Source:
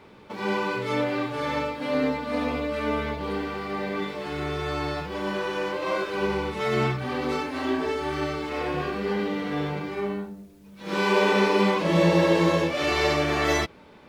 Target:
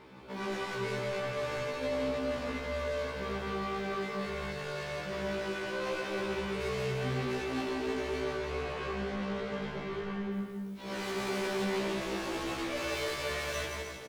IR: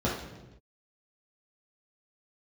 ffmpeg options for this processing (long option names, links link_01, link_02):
-filter_complex "[0:a]asettb=1/sr,asplit=3[link_01][link_02][link_03];[link_01]atrim=end=8.204[link_04];[link_02]atrim=start=8.2:end=10.32,asetpts=PTS-STARTPTS,afade=type=in:duration=0.004:curve=qsin,afade=type=out:start_time=2.116:duration=0.004:curve=qsin,highshelf=frequency=5700:gain=-11.5[link_05];[link_03]atrim=start=10.316[link_06];[link_04][link_05]acrossfade=duration=0.004:curve1=hsin:curve2=qsin[link_07];[link_07][link_06]acrossfade=duration=0.004:curve1=qsin:curve2=hsin,asoftclip=type=tanh:threshold=-33dB,aecho=1:1:170|306|414.8|501.8|571.5:0.631|0.398|0.251|0.158|0.1,afftfilt=real='re*1.73*eq(mod(b,3),0)':imag='im*1.73*eq(mod(b,3),0)':win_size=2048:overlap=0.75"